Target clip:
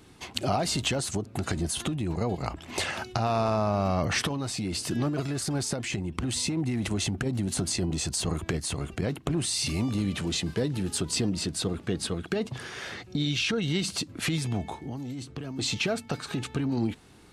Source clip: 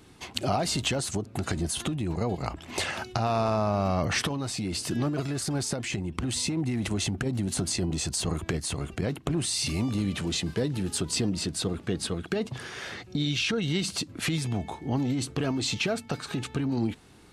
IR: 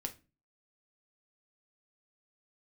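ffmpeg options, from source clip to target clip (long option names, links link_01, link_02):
-filter_complex "[0:a]asettb=1/sr,asplit=3[link_01][link_02][link_03];[link_01]atrim=end=14.814[link_04];[link_02]atrim=start=14.81:end=15.59,asetpts=PTS-STARTPTS,afade=type=in:duration=0.004:curve=qsin,afade=type=out:start_time=0.776:duration=0.004:curve=qsin,acrossover=split=270|6500[link_05][link_06][link_07];[link_05]acompressor=threshold=-37dB:ratio=4[link_08];[link_06]acompressor=threshold=-43dB:ratio=4[link_09];[link_07]acompressor=threshold=-56dB:ratio=4[link_10];[link_08][link_09][link_10]amix=inputs=3:normalize=0[link_11];[link_03]atrim=start=15.586[link_12];[link_04][link_11]acrossfade=duration=0.004:curve1=hsin:curve2=qsin[link_13];[link_13][link_12]acrossfade=duration=0.004:curve1=qsin:curve2=hsin"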